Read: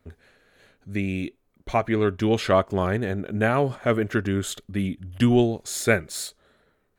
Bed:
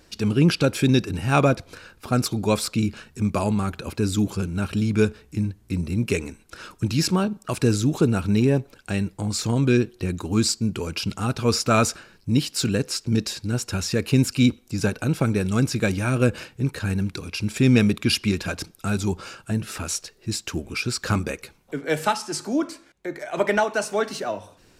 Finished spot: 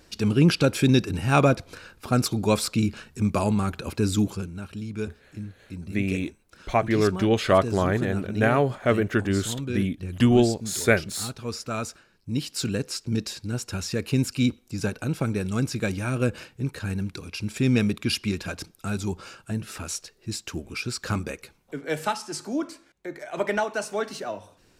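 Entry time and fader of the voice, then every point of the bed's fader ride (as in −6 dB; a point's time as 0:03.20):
5.00 s, +0.5 dB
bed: 0:04.21 −0.5 dB
0:04.63 −11.5 dB
0:12.10 −11.5 dB
0:12.52 −4.5 dB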